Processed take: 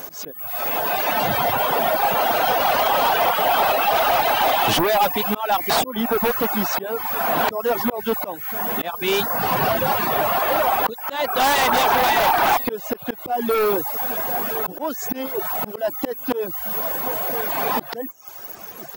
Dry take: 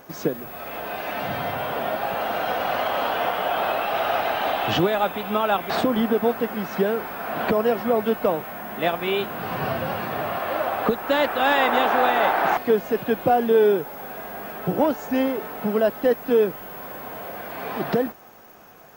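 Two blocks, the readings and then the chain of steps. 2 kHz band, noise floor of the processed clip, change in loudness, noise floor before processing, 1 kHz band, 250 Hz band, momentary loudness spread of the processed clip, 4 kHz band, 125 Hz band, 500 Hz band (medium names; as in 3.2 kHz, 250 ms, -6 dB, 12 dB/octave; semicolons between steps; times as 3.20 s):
+3.0 dB, -37 dBFS, +3.5 dB, -39 dBFS, +4.5 dB, -2.0 dB, 9 LU, +6.5 dB, -1.0 dB, -1.0 dB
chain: reverb removal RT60 0.59 s; tone controls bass -2 dB, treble +11 dB; on a send: delay 1017 ms -22.5 dB; on the sum: reverb removal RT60 0.55 s; slow attack 359 ms; in parallel at -9.5 dB: sine folder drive 15 dB, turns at -7.5 dBFS; on the sum: dynamic bell 910 Hz, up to +6 dB, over -34 dBFS, Q 2.6; trim -3 dB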